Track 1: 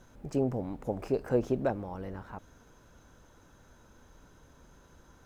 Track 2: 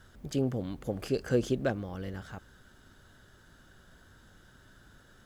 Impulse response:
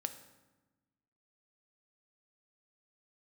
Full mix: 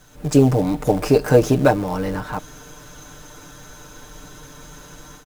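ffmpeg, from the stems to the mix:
-filter_complex "[0:a]aecho=1:1:6.7:0.89,dynaudnorm=f=120:g=3:m=12dB,volume=1dB[a];[1:a]acrusher=bits=7:dc=4:mix=0:aa=0.000001,volume=-4.5dB[b];[a][b]amix=inputs=2:normalize=0,highshelf=f=2.4k:g=9.5"

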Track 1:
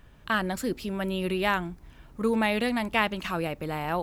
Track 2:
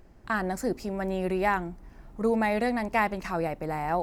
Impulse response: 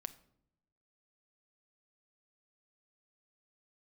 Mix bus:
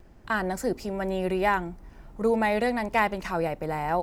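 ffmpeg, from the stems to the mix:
-filter_complex "[0:a]volume=-12.5dB[a];[1:a]asoftclip=type=hard:threshold=-13dB,adelay=2.2,volume=1.5dB[b];[a][b]amix=inputs=2:normalize=0"

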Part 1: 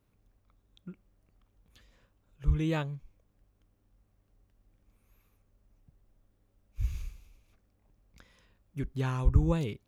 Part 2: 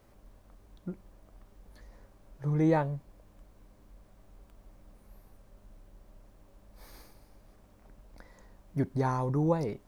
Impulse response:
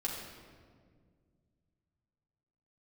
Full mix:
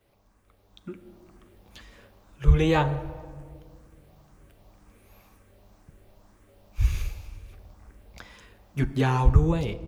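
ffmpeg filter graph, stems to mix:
-filter_complex "[0:a]equalizer=f=2.1k:w=0.37:g=5,acrossover=split=280[a][b];[b]acompressor=threshold=-34dB:ratio=2.5[c];[a][c]amix=inputs=2:normalize=0,volume=0.5dB,asplit=2[d][e];[e]volume=-15.5dB[f];[1:a]highpass=f=240:p=1,asplit=2[g][h];[h]afreqshift=2[i];[g][i]amix=inputs=2:normalize=1,volume=-1,adelay=9.1,volume=-4dB,asplit=2[j][k];[k]volume=-6.5dB[l];[2:a]atrim=start_sample=2205[m];[f][l]amix=inputs=2:normalize=0[n];[n][m]afir=irnorm=-1:irlink=0[o];[d][j][o]amix=inputs=3:normalize=0,dynaudnorm=f=330:g=5:m=7.5dB"

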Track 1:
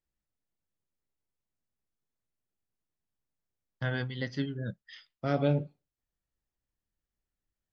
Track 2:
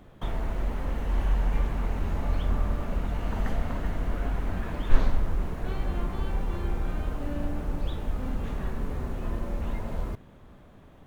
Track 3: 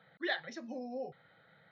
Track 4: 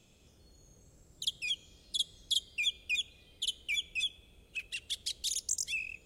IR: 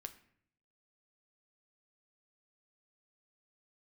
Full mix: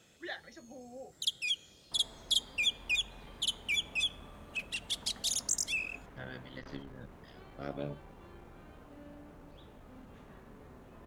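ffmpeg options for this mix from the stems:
-filter_complex "[0:a]tremolo=f=69:d=0.824,adelay=2350,volume=-7.5dB[a];[1:a]asoftclip=type=tanh:threshold=-16.5dB,adelay=1700,volume=-18.5dB,asplit=2[b][c];[c]volume=-1dB[d];[2:a]volume=-7dB[e];[3:a]volume=1.5dB[f];[4:a]atrim=start_sample=2205[g];[d][g]afir=irnorm=-1:irlink=0[h];[a][b][e][f][h]amix=inputs=5:normalize=0,highpass=f=180:p=1"

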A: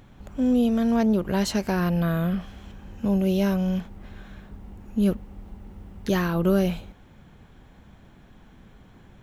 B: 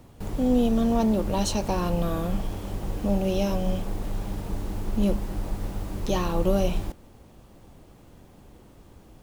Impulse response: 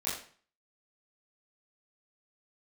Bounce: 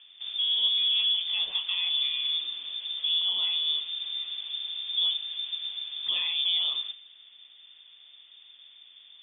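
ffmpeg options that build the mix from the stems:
-filter_complex "[0:a]lowpass=f=1.1k:p=1,acompressor=threshold=-26dB:ratio=6,volume=-4dB[a];[1:a]volume=-9dB,asplit=2[b][c];[c]volume=-13.5dB[d];[2:a]atrim=start_sample=2205[e];[d][e]afir=irnorm=-1:irlink=0[f];[a][b][f]amix=inputs=3:normalize=0,lowpass=f=3.1k:t=q:w=0.5098,lowpass=f=3.1k:t=q:w=0.6013,lowpass=f=3.1k:t=q:w=0.9,lowpass=f=3.1k:t=q:w=2.563,afreqshift=-3600"

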